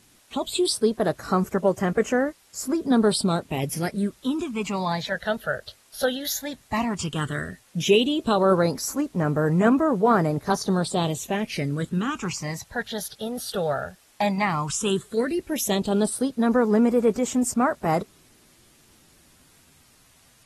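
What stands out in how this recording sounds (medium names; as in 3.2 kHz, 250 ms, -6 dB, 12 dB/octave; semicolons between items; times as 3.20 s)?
phasing stages 8, 0.13 Hz, lowest notch 300–3800 Hz; a quantiser's noise floor 10-bit, dither triangular; AAC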